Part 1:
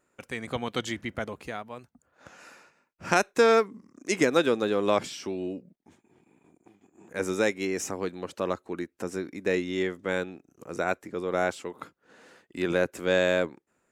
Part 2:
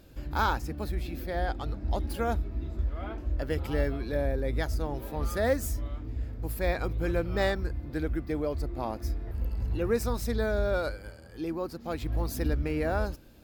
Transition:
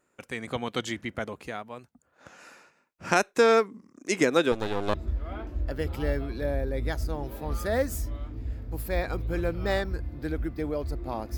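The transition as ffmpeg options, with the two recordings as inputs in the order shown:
-filter_complex "[0:a]asettb=1/sr,asplit=3[s0][s1][s2];[s0]atrim=end=4.524[s3];[s1]atrim=start=4.52:end=4.94,asetpts=PTS-STARTPTS,afade=t=in:d=0.004:c=qsin,afade=t=out:st=0.416:d=0.004:c=qsin,aeval=exprs='max(val(0),0)':c=same[s4];[s2]atrim=start=4.936[s5];[s3][s4]acrossfade=d=0.004:c1=hsin:c2=qsin[s6];[s6][s5]acrossfade=d=0.004:c1=qsin:c2=hsin,apad=whole_dur=11.37,atrim=end=11.37,atrim=end=4.942[s7];[1:a]atrim=start=2.648:end=9.08[s8];[s7][s8]acrossfade=d=0.004:c1=hsin:c2=hsin"

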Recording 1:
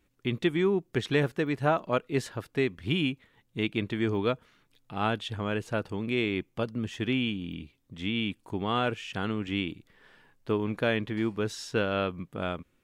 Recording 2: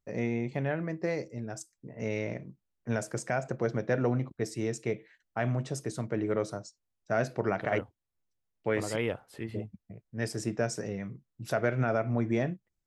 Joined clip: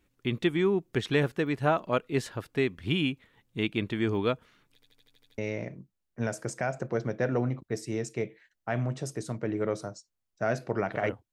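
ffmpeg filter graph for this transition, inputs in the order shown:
-filter_complex "[0:a]apad=whole_dur=11.32,atrim=end=11.32,asplit=8[s0][s1][s2][s3][s4][s5][s6][s7];[s0]atrim=end=4.822[s8];[s1]atrim=start=4.738:end=4.822[s9];[s2]atrim=start=4.738:end=4.822[s10];[s3]atrim=start=4.738:end=4.822[s11];[s4]atrim=start=4.738:end=4.822[s12];[s5]atrim=start=4.738:end=4.822[s13];[s6]atrim=start=4.738:end=4.822[s14];[s7]atrim=start=4.738:end=4.822[s15];[1:a]atrim=start=2.068:end=8.01[s16];[s8][s9]acrossfade=d=0.004:c1=hsin:c2=hsin[s17];[s17][s10]acrossfade=d=0.004:c1=hsin:c2=hsin[s18];[s18][s11]acrossfade=d=0.004:c1=hsin:c2=hsin[s19];[s19][s12]acrossfade=d=0.004:c1=hsin:c2=hsin[s20];[s20][s13]acrossfade=d=0.004:c1=hsin:c2=hsin[s21];[s21][s14]acrossfade=d=0.004:c1=hsin:c2=hsin[s22];[s22][s15]acrossfade=d=0.004:c1=hsin:c2=hsin[s23];[s23][s16]acrossfade=d=0.004:c1=hsin:c2=hsin"

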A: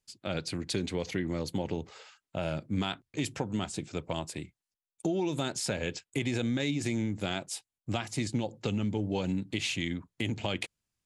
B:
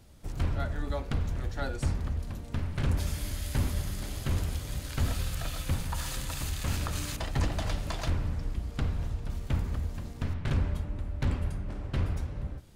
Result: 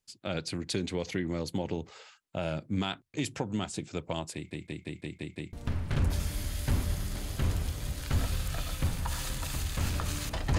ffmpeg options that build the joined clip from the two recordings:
-filter_complex "[0:a]apad=whole_dur=10.58,atrim=end=10.58,asplit=7[s0][s1][s2][s3][s4][s5][s6];[s0]atrim=end=4.512[s7];[s1]atrim=start=4.338:end=4.512[s8];[s2]atrim=start=4.338:end=4.512[s9];[s3]atrim=start=4.338:end=4.512[s10];[s4]atrim=start=4.338:end=4.512[s11];[s5]atrim=start=4.338:end=4.512[s12];[s6]atrim=start=4.338:end=4.512[s13];[1:a]atrim=start=2.398:end=7.45[s14];[s7][s8]acrossfade=d=0.004:c1=hsin:c2=hsin[s15];[s15][s9]acrossfade=d=0.004:c1=hsin:c2=hsin[s16];[s16][s10]acrossfade=d=0.004:c1=hsin:c2=hsin[s17];[s17][s11]acrossfade=d=0.004:c1=hsin:c2=hsin[s18];[s18][s12]acrossfade=d=0.004:c1=hsin:c2=hsin[s19];[s19][s13]acrossfade=d=0.004:c1=hsin:c2=hsin[s20];[s20][s14]acrossfade=d=0.004:c1=hsin:c2=hsin"

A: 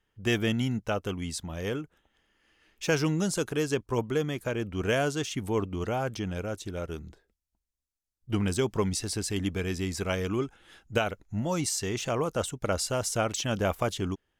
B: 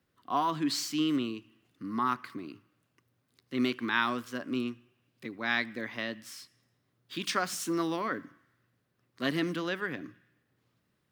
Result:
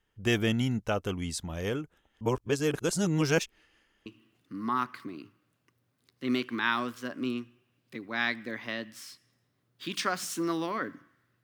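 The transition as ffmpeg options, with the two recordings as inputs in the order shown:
-filter_complex "[0:a]apad=whole_dur=11.43,atrim=end=11.43,asplit=2[s0][s1];[s0]atrim=end=2.212[s2];[s1]atrim=start=2.208:end=4.062,asetpts=PTS-STARTPTS,areverse[s3];[1:a]atrim=start=1.358:end=8.73[s4];[s2][s3]acrossfade=d=0.004:c1=hsin:c2=hsin[s5];[s5][s4]acrossfade=d=0.004:c1=hsin:c2=hsin"

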